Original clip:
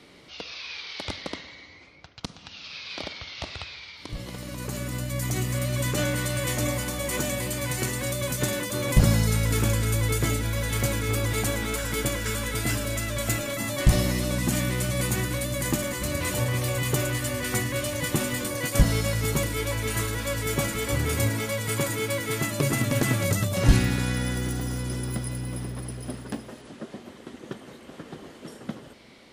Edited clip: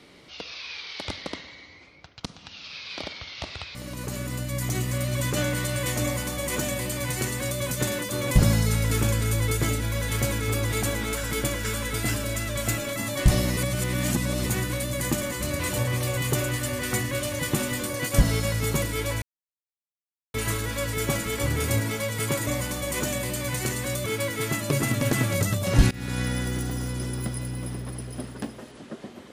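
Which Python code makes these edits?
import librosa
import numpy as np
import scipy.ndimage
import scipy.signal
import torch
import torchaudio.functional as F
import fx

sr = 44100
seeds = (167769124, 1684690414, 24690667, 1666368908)

y = fx.edit(x, sr, fx.cut(start_s=3.75, length_s=0.61),
    fx.duplicate(start_s=6.64, length_s=1.59, to_s=21.96),
    fx.reverse_span(start_s=14.18, length_s=0.89),
    fx.insert_silence(at_s=19.83, length_s=1.12),
    fx.fade_in_from(start_s=23.81, length_s=0.31, floor_db=-23.5), tone=tone)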